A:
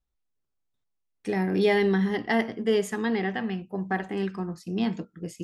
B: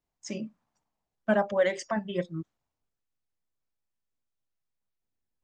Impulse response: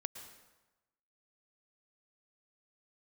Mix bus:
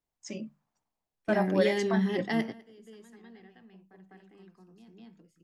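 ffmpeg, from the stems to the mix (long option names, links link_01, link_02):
-filter_complex "[0:a]highpass=110,acrossover=split=320|3000[link_01][link_02][link_03];[link_02]acompressor=threshold=-37dB:ratio=2[link_04];[link_01][link_04][link_03]amix=inputs=3:normalize=0,volume=-1.5dB,asplit=2[link_05][link_06];[link_06]volume=-22.5dB[link_07];[1:a]volume=-3dB,asplit=2[link_08][link_09];[link_09]apad=whole_len=239890[link_10];[link_05][link_10]sidechaingate=range=-27dB:threshold=-50dB:ratio=16:detection=peak[link_11];[link_07]aecho=0:1:202:1[link_12];[link_11][link_08][link_12]amix=inputs=3:normalize=0,bandreject=frequency=50:width_type=h:width=6,bandreject=frequency=100:width_type=h:width=6,bandreject=frequency=150:width_type=h:width=6,bandreject=frequency=200:width_type=h:width=6"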